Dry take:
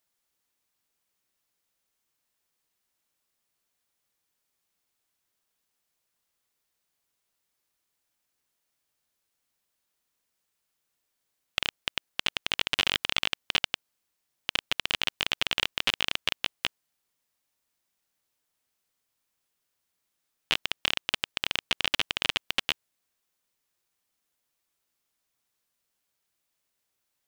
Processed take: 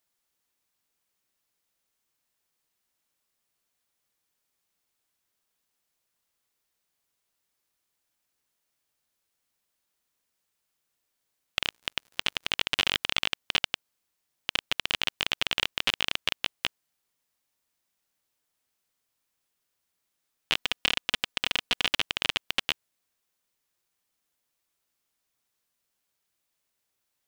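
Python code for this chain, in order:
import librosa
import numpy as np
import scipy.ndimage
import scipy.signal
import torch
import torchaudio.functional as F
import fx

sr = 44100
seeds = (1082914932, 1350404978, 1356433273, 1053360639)

y = fx.dmg_crackle(x, sr, seeds[0], per_s=120.0, level_db=-44.0, at=(11.66, 12.47), fade=0.02)
y = fx.comb(y, sr, ms=4.1, depth=0.57, at=(20.57, 21.88))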